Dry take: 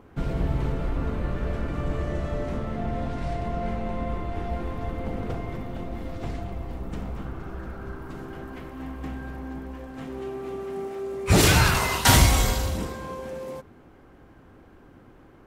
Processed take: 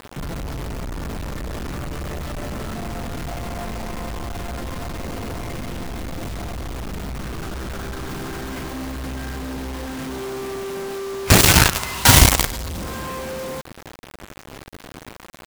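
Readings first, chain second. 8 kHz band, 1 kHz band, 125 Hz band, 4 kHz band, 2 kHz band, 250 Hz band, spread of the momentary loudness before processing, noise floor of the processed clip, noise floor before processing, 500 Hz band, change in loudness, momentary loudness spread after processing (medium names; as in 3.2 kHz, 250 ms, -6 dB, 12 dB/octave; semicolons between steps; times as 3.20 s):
+8.0 dB, +3.0 dB, +2.5 dB, +6.5 dB, +5.0 dB, +2.5 dB, 19 LU, -43 dBFS, -52 dBFS, +2.0 dB, +4.5 dB, 20 LU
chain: dynamic bell 530 Hz, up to -4 dB, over -43 dBFS, Q 1.3; in parallel at +1.5 dB: compression 12:1, threshold -34 dBFS, peak gain reduction 22 dB; on the sum: companded quantiser 2-bit; trim -3 dB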